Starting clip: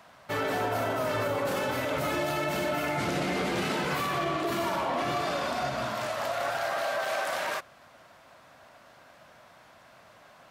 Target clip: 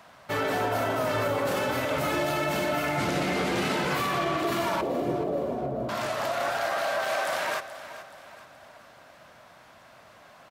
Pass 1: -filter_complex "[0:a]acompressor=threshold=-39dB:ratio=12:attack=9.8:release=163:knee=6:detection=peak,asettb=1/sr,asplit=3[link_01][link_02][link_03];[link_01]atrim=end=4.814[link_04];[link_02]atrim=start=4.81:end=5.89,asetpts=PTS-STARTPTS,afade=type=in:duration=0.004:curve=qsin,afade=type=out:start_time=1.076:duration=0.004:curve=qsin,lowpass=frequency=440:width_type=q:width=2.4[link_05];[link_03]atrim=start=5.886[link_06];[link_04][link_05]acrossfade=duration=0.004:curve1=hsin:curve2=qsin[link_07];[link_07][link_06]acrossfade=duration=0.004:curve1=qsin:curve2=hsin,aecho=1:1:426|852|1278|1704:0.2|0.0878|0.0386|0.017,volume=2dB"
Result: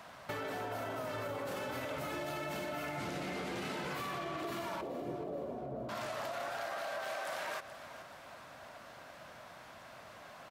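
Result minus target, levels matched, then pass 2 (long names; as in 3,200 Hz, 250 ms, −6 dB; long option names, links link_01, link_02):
downward compressor: peak gain reduction +14 dB
-filter_complex "[0:a]asettb=1/sr,asplit=3[link_01][link_02][link_03];[link_01]atrim=end=4.814[link_04];[link_02]atrim=start=4.81:end=5.89,asetpts=PTS-STARTPTS,afade=type=in:duration=0.004:curve=qsin,afade=type=out:start_time=1.076:duration=0.004:curve=qsin,lowpass=frequency=440:width_type=q:width=2.4[link_05];[link_03]atrim=start=5.886[link_06];[link_04][link_05]acrossfade=duration=0.004:curve1=hsin:curve2=qsin[link_07];[link_07][link_06]acrossfade=duration=0.004:curve1=qsin:curve2=hsin,aecho=1:1:426|852|1278|1704:0.2|0.0878|0.0386|0.017,volume=2dB"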